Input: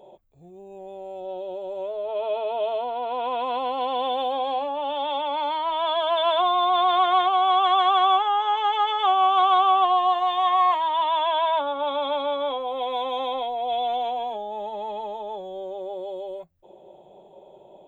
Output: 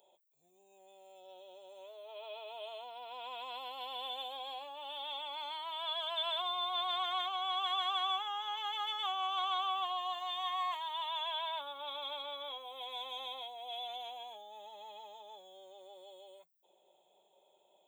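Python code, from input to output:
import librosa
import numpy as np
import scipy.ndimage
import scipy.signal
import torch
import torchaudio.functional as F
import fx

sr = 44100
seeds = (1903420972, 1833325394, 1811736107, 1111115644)

y = np.diff(x, prepend=0.0)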